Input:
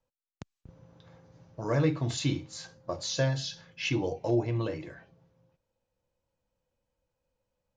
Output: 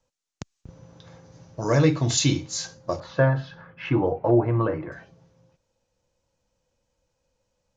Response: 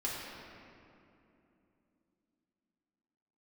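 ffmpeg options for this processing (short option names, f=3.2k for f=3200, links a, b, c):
-af "asetnsamples=n=441:p=0,asendcmd='3 lowpass f 1300;4.92 lowpass f 6400',lowpass=f=6.6k:t=q:w=2.5,volume=7dB"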